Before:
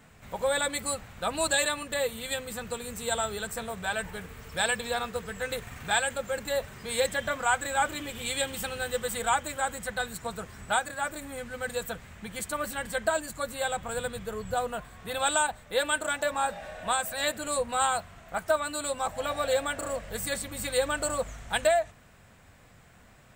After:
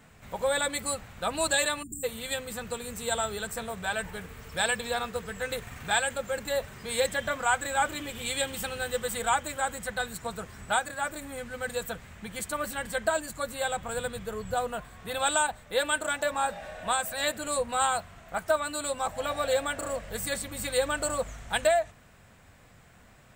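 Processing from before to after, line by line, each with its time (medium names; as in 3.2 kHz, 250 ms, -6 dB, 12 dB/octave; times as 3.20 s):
1.83–2.04 s: spectral selection erased 430–6800 Hz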